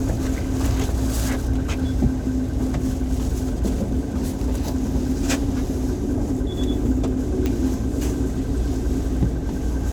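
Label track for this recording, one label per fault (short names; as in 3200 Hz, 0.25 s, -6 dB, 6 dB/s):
7.460000	7.460000	pop -11 dBFS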